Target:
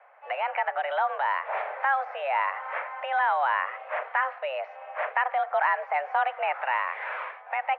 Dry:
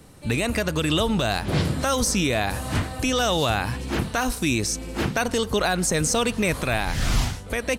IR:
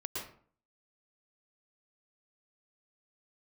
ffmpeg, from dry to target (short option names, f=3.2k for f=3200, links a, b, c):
-af "highpass=f=360:t=q:w=0.5412,highpass=f=360:t=q:w=1.307,lowpass=f=2k:t=q:w=0.5176,lowpass=f=2k:t=q:w=0.7071,lowpass=f=2k:t=q:w=1.932,afreqshift=270"